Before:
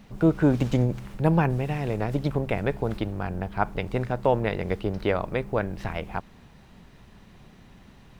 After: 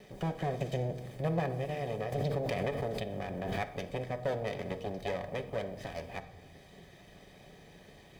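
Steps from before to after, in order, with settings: minimum comb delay 1.6 ms; bell 110 Hz -3.5 dB 1.7 oct; notch comb 1400 Hz; compressor 1.5:1, threshold -49 dBFS, peak gain reduction 11.5 dB; bell 1100 Hz -9 dB 0.35 oct; reverb RT60 1.1 s, pre-delay 5 ms, DRR 7.5 dB; 2.12–3.66 backwards sustainer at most 24 dB/s; gain +1.5 dB

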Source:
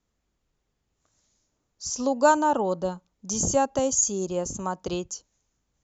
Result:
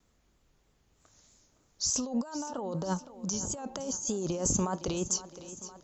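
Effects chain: negative-ratio compressor -34 dBFS, ratio -1; vibrato 3.2 Hz 66 cents; thinning echo 0.513 s, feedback 64%, high-pass 150 Hz, level -14.5 dB

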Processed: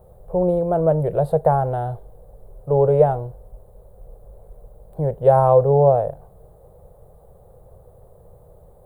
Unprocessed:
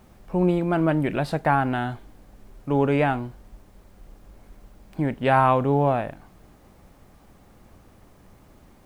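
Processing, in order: EQ curve 150 Hz 0 dB, 270 Hz -23 dB, 480 Hz +9 dB, 2500 Hz -29 dB, 3800 Hz -18 dB, 5600 Hz -28 dB, 9600 Hz -5 dB; gain +5 dB

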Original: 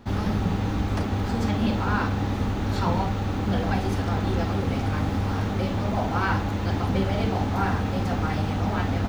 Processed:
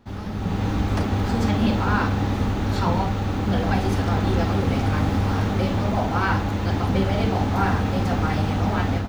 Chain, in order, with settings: AGC gain up to 12.5 dB; gain -7 dB

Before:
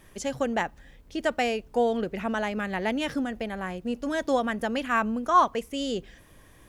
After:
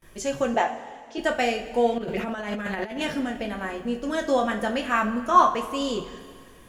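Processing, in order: gate with hold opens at -46 dBFS; 0.54–1.18 speaker cabinet 410–7200 Hz, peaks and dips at 440 Hz +7 dB, 750 Hz +7 dB, 1700 Hz -3 dB, 4100 Hz -3 dB; reverb, pre-delay 3 ms, DRR 0.5 dB; 1.98–3.03 negative-ratio compressor -29 dBFS, ratio -0.5

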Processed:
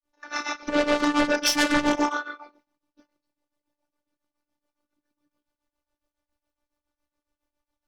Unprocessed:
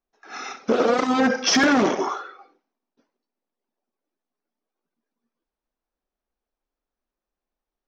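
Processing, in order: in parallel at -8 dB: sine folder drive 12 dB, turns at -9 dBFS; on the sum: ring modulator 63 Hz; grains 0.18 s, grains 7.2/s, spray 11 ms, pitch spread up and down by 0 st; robotiser 294 Hz; gain +1.5 dB

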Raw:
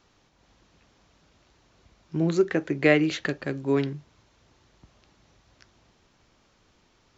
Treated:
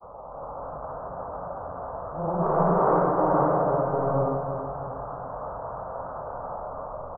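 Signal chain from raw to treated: zero-crossing step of -20.5 dBFS; gate with hold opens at -13 dBFS; steep low-pass 1200 Hz 72 dB/oct; resonant low shelf 430 Hz -9.5 dB, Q 3; negative-ratio compressor -33 dBFS, ratio -1; grains, pitch spread up and down by 0 st; echoes that change speed 0.303 s, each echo +2 st, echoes 2, each echo -6 dB; feedback echo 0.324 s, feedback 48%, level -8.5 dB; non-linear reverb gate 0.43 s rising, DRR -5.5 dB; gain +2 dB

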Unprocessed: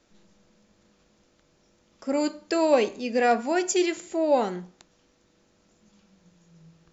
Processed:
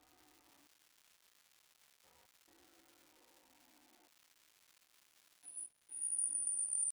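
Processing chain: half-wave gain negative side -3 dB; HPF 42 Hz 12 dB/oct; tilt shelf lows -7.5 dB, about 1400 Hz; painted sound fall, 0.63–2.51, 1200–6800 Hz -19 dBFS; air absorption 200 m; de-hum 60.88 Hz, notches 18; Paulstretch 18×, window 0.05 s, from 0.36; step gate "xxx......x.xxxx" 66 bpm -24 dB; low-pass opened by the level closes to 830 Hz, open at -25.5 dBFS; pitch shift +7 st; crackle 450/s -60 dBFS; mismatched tape noise reduction encoder only; gain -2.5 dB

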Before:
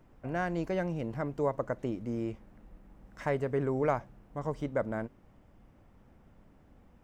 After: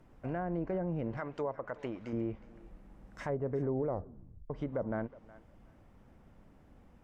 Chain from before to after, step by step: treble ducked by the level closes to 750 Hz, closed at -26.5 dBFS; 1.17–2.13 tilt shelf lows -9 dB, about 660 Hz; limiter -26 dBFS, peak gain reduction 7 dB; thinning echo 0.366 s, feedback 23%, high-pass 590 Hz, level -17 dB; 3.86 tape stop 0.64 s

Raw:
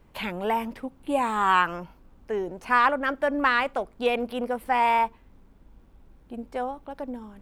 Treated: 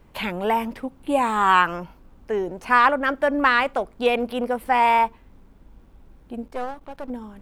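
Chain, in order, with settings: 6.48–7.1 half-wave gain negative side -12 dB; gain +4 dB

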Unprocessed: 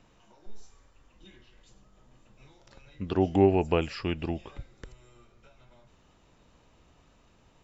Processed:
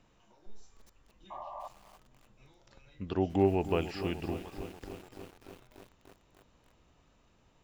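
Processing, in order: painted sound noise, 1.3–1.68, 550–1200 Hz -38 dBFS; lo-fi delay 0.294 s, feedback 80%, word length 7-bit, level -12.5 dB; gain -5 dB

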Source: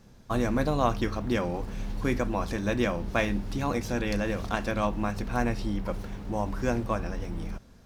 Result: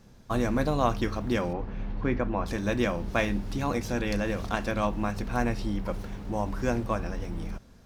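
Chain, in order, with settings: 1.53–2.46 LPF 2400 Hz 12 dB/oct

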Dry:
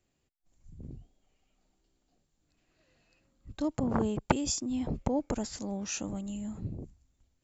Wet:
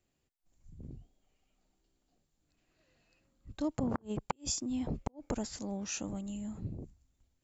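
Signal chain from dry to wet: flipped gate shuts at -16 dBFS, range -36 dB; gain -2.5 dB

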